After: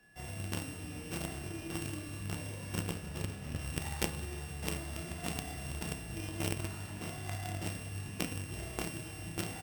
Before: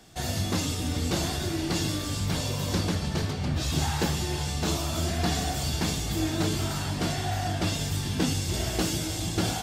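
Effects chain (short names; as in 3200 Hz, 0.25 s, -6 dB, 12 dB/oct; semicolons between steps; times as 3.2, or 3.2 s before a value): sample sorter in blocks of 16 samples; Schroeder reverb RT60 3 s, combs from 28 ms, DRR 8.5 dB; whine 1700 Hz -52 dBFS; doubler 30 ms -2.5 dB; added harmonics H 3 -7 dB, 5 -20 dB, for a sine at -11.5 dBFS; gain +1 dB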